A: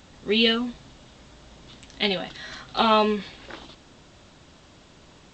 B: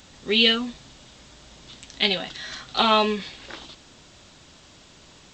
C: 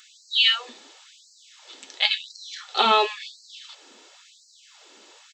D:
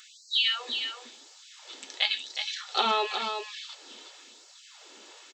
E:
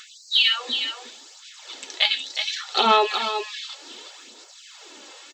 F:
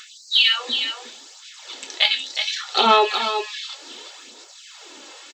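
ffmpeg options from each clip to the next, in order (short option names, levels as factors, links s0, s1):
-af "highshelf=f=2400:g=8.5,volume=0.841"
-af "aecho=1:1:2.3:0.33,afftfilt=real='re*gte(b*sr/1024,210*pow(4100/210,0.5+0.5*sin(2*PI*0.95*pts/sr)))':imag='im*gte(b*sr/1024,210*pow(4100/210,0.5+0.5*sin(2*PI*0.95*pts/sr)))':win_size=1024:overlap=0.75"
-af "acompressor=threshold=0.0794:ratio=6,aecho=1:1:365:0.447"
-af "aphaser=in_gain=1:out_gain=1:delay=3.8:decay=0.4:speed=0.68:type=sinusoidal,volume=1.88"
-filter_complex "[0:a]asplit=2[s0][s1];[s1]adelay=26,volume=0.251[s2];[s0][s2]amix=inputs=2:normalize=0,volume=1.26"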